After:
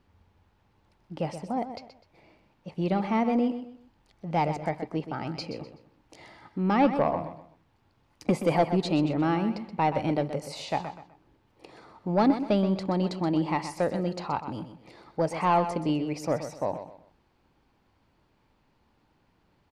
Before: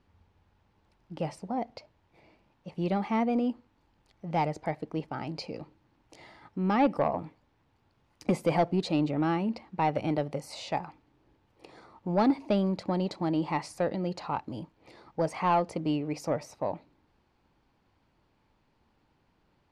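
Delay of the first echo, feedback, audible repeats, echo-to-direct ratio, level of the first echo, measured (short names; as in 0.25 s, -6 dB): 0.126 s, 30%, 3, -10.0 dB, -10.5 dB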